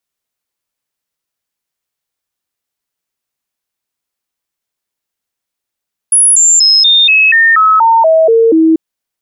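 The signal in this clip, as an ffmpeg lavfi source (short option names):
-f lavfi -i "aevalsrc='0.631*clip(min(mod(t,0.24),0.24-mod(t,0.24))/0.005,0,1)*sin(2*PI*10300*pow(2,-floor(t/0.24)/2)*mod(t,0.24))':d=2.64:s=44100"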